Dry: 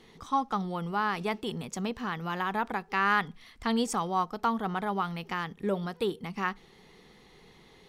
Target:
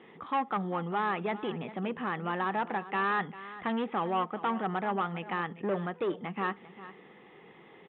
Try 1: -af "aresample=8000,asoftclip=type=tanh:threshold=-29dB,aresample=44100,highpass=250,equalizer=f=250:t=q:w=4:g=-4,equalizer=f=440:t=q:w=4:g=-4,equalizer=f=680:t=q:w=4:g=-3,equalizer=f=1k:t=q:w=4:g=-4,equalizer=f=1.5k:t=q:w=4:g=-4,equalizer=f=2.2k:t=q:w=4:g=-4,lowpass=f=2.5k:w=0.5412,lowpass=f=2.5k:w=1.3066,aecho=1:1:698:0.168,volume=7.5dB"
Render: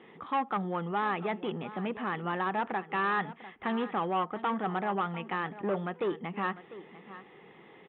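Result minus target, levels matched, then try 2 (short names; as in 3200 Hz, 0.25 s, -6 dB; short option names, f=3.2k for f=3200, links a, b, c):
echo 0.301 s late
-af "aresample=8000,asoftclip=type=tanh:threshold=-29dB,aresample=44100,highpass=250,equalizer=f=250:t=q:w=4:g=-4,equalizer=f=440:t=q:w=4:g=-4,equalizer=f=680:t=q:w=4:g=-3,equalizer=f=1k:t=q:w=4:g=-4,equalizer=f=1.5k:t=q:w=4:g=-4,equalizer=f=2.2k:t=q:w=4:g=-4,lowpass=f=2.5k:w=0.5412,lowpass=f=2.5k:w=1.3066,aecho=1:1:397:0.168,volume=7.5dB"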